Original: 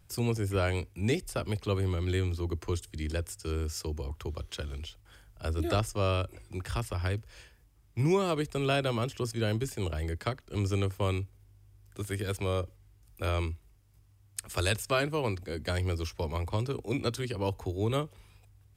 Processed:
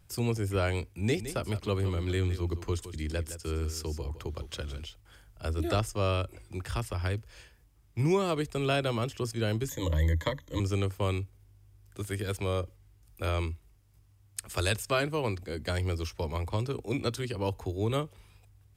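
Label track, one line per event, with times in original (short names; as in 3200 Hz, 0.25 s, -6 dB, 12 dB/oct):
0.940000	4.850000	echo 0.163 s -12 dB
9.690000	10.600000	ripple EQ crests per octave 1.1, crest to trough 18 dB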